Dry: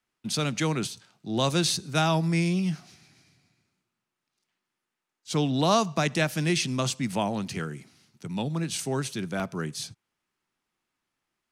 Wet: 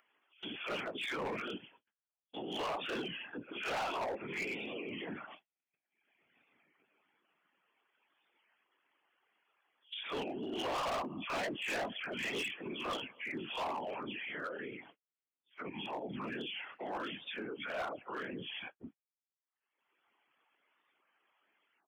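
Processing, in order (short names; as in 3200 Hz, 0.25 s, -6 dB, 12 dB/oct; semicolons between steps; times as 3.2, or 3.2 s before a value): spectral delay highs early, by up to 0.162 s; plain phase-vocoder stretch 1.9×; brick-wall FIR low-pass 3400 Hz; gate -52 dBFS, range -51 dB; doubler 19 ms -10 dB; reverb removal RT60 0.61 s; whisperiser; HPF 460 Hz 12 dB/oct; hard clip -32.5 dBFS, distortion -6 dB; upward compressor, threshold -41 dBFS; limiter -40.5 dBFS, peak gain reduction 8.5 dB; record warp 33 1/3 rpm, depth 100 cents; gain +6.5 dB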